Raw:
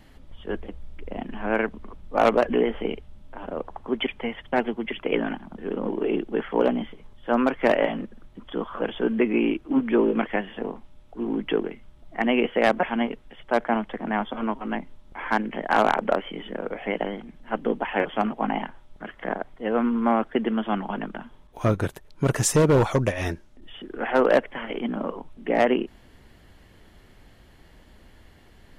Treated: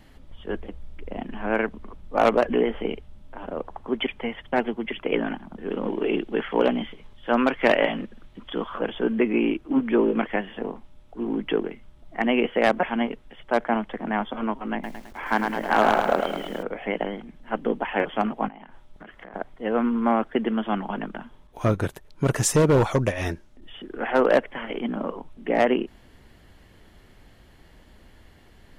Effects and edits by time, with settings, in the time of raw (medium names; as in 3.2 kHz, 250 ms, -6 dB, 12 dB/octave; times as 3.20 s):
5.69–8.78 s: peaking EQ 3 kHz +6 dB 1.8 oct
14.73–16.63 s: bit-crushed delay 106 ms, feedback 55%, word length 8-bit, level -4.5 dB
18.48–19.34 s: compression 20:1, threshold -38 dBFS